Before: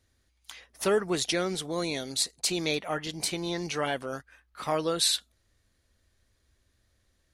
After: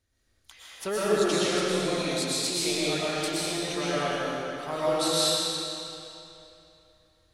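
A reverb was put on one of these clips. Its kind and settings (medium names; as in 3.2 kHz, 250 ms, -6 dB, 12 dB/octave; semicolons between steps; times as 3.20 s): algorithmic reverb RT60 2.9 s, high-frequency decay 0.9×, pre-delay 80 ms, DRR -9 dB; trim -6.5 dB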